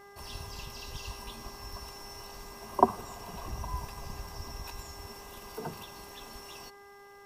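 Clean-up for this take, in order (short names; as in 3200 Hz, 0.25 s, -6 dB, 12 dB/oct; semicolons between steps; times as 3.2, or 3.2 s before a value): de-hum 401.8 Hz, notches 5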